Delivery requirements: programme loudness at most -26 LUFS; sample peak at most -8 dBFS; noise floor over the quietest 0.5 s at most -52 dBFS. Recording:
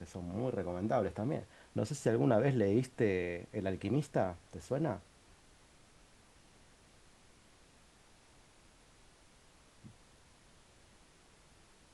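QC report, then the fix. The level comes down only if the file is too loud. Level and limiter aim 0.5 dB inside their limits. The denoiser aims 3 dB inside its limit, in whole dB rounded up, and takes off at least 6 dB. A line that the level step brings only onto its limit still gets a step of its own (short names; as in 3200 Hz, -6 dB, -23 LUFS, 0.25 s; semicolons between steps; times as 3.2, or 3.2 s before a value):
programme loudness -35.0 LUFS: OK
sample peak -16.0 dBFS: OK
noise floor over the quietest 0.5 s -63 dBFS: OK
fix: none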